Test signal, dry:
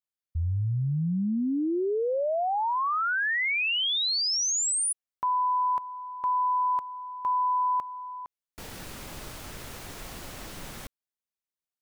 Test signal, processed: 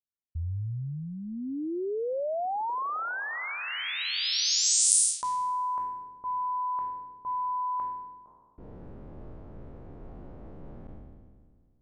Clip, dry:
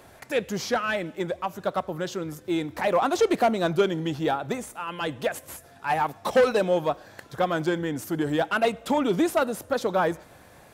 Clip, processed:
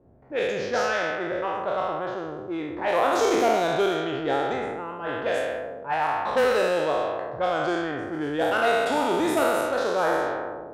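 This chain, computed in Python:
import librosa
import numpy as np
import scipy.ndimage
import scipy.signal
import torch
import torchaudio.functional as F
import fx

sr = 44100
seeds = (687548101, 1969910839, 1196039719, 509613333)

y = fx.spec_trails(x, sr, decay_s=2.14)
y = fx.env_lowpass(y, sr, base_hz=360.0, full_db=-14.0)
y = fx.dynamic_eq(y, sr, hz=190.0, q=1.6, threshold_db=-39.0, ratio=8.0, max_db=-7)
y = y * librosa.db_to_amplitude(-4.0)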